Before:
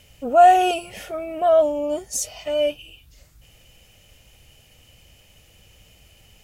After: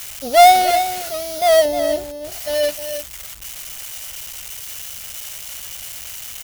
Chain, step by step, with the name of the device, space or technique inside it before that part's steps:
comb filter 1.4 ms, depth 49%
budget class-D amplifier (gap after every zero crossing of 0.18 ms; spike at every zero crossing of −15 dBFS)
0:01.65–0:02.32: tilt shelving filter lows +5 dB, about 750 Hz
single-tap delay 310 ms −9.5 dB

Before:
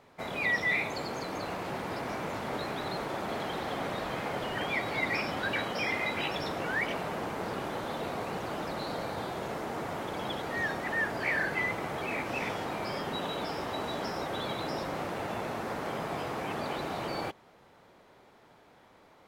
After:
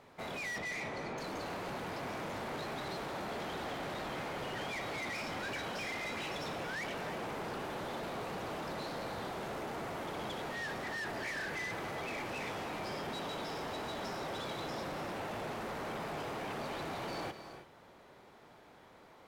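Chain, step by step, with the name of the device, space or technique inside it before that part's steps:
0:00.58–0:01.18: high-frequency loss of the air 300 metres
saturation between pre-emphasis and de-emphasis (high-shelf EQ 9,100 Hz +10 dB; soft clipping −37.5 dBFS, distortion −7 dB; high-shelf EQ 9,100 Hz −10 dB)
reverb whose tail is shaped and stops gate 350 ms rising, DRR 9 dB

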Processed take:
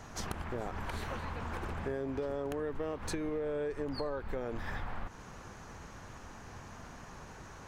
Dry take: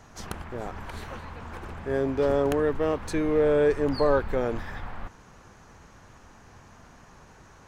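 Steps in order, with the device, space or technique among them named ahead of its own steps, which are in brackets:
serial compression, peaks first (downward compressor, threshold −30 dBFS, peak gain reduction 12.5 dB; downward compressor 2.5 to 1, threshold −38 dBFS, peak gain reduction 7 dB)
level +2.5 dB

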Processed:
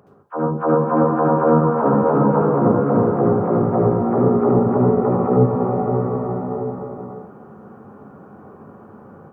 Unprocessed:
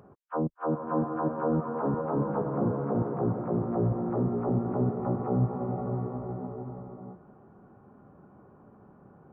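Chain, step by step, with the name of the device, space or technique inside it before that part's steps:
far laptop microphone (convolution reverb RT60 0.35 s, pre-delay 67 ms, DRR −1.5 dB; high-pass filter 140 Hz 6 dB per octave; automatic gain control gain up to 9 dB)
level +2 dB

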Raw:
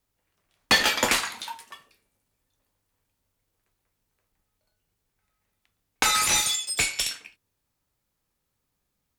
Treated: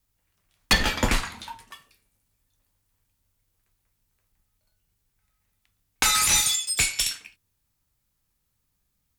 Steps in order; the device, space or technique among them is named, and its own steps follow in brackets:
smiley-face EQ (low-shelf EQ 140 Hz +7.5 dB; parametric band 470 Hz −5 dB 1.9 octaves; high-shelf EQ 6,100 Hz +5 dB)
0:00.73–0:01.71: spectral tilt −3 dB per octave

